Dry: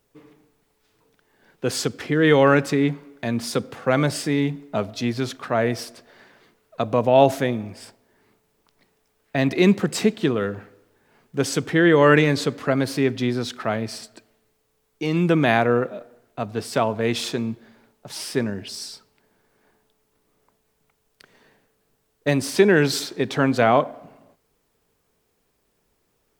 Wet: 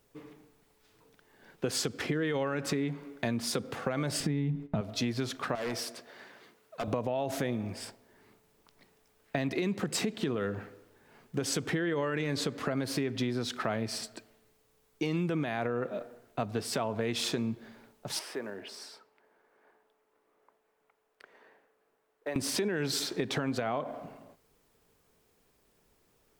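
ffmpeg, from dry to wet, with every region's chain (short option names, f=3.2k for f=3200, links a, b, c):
-filter_complex "[0:a]asettb=1/sr,asplit=3[a][b][c];[a]atrim=end=4.204[d];[b]atrim=start=4.2:end=4.81,asetpts=PTS-STARTPTS,afade=t=in:d=0.004:c=qsin,afade=t=out:st=0.606:d=0.004:c=qsin,agate=range=-13dB:threshold=-44dB:ratio=16:release=100:detection=peak,bass=f=250:g=14,treble=f=4k:g=-7[e];[c]atrim=start=4.806[f];[d][e]acrossfade=d=0.004:c1=hsin:c2=qsin[g];[g][f]acrossfade=d=0.004:c1=qsin:c2=hsin,asettb=1/sr,asplit=3[h][i][j];[h]atrim=end=5.554[k];[i]atrim=start=5.55:end=6.88,asetpts=PTS-STARTPTS,afade=t=in:d=0.004:c=qsin,afade=t=out:st=1.326:d=0.004:c=qsin,highpass=f=220:p=1,asoftclip=type=hard:threshold=-25.5dB,acompressor=threshold=-33dB:ratio=2.5:attack=3.2:release=140:knee=1:detection=peak[l];[j]atrim=start=6.876[m];[k][l]acrossfade=d=0.004:c1=hsin:c2=qsin[n];[n][m]acrossfade=d=0.004:c1=qsin:c2=hsin,asettb=1/sr,asplit=3[o][p][q];[o]atrim=end=18.194[r];[p]atrim=start=18.19:end=22.36,asetpts=PTS-STARTPTS,afade=t=in:d=0.004:c=qsin,afade=t=out:st=4.166:d=0.004:c=qsin,acrusher=bits=6:mode=log:mix=0:aa=0.000001,acrossover=split=320 2300:gain=0.0794 1 0.2[s][t][u];[s][t][u]amix=inputs=3:normalize=0,acompressor=threshold=-40dB:ratio=2:attack=3.2:release=140:knee=1:detection=peak[v];[q]atrim=start=22.356[w];[r][v]acrossfade=d=0.004:c1=hsin:c2=qsin[x];[x][w]acrossfade=d=0.004:c1=qsin:c2=hsin,alimiter=limit=-14.5dB:level=0:latency=1:release=90,acompressor=threshold=-28dB:ratio=6"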